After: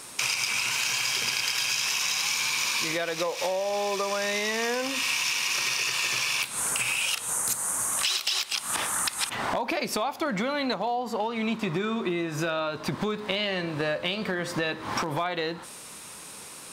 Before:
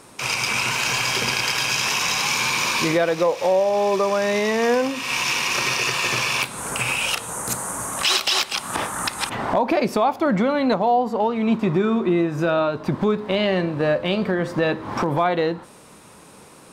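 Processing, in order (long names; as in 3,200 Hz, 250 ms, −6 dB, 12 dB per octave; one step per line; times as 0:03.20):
tilt shelving filter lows −7 dB, about 1,500 Hz
downward compressor, threshold −27 dBFS, peak gain reduction 15 dB
level +2 dB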